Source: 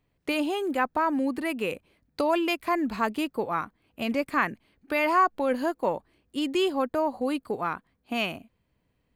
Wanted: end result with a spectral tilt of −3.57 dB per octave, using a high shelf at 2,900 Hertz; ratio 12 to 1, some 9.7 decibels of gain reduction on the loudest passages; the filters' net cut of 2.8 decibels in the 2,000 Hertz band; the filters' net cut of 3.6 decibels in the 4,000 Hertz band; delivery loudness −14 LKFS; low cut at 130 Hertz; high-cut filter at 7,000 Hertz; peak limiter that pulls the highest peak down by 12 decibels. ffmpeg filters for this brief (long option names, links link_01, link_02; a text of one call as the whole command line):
ffmpeg -i in.wav -af "highpass=130,lowpass=7000,equalizer=frequency=2000:width_type=o:gain=-3.5,highshelf=frequency=2900:gain=4,equalizer=frequency=4000:width_type=o:gain=-6.5,acompressor=threshold=-27dB:ratio=12,volume=25dB,alimiter=limit=-5dB:level=0:latency=1" out.wav